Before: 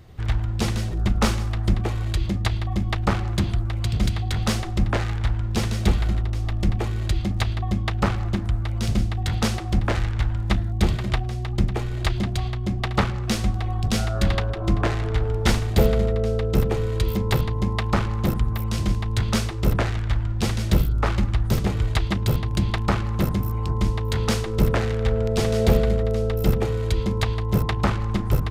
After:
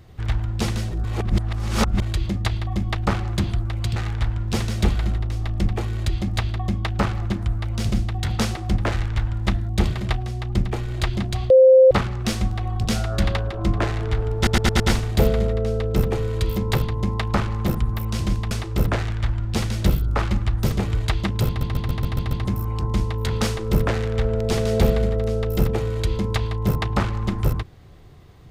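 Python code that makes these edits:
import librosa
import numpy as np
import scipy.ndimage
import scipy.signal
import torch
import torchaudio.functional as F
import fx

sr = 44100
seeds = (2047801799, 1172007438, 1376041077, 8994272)

y = fx.edit(x, sr, fx.reverse_span(start_s=1.04, length_s=0.98),
    fx.cut(start_s=3.96, length_s=1.03),
    fx.bleep(start_s=12.53, length_s=0.41, hz=522.0, db=-7.5),
    fx.stutter(start_s=15.39, slice_s=0.11, count=5),
    fx.cut(start_s=19.1, length_s=0.28),
    fx.stutter_over(start_s=22.34, slice_s=0.14, count=7), tone=tone)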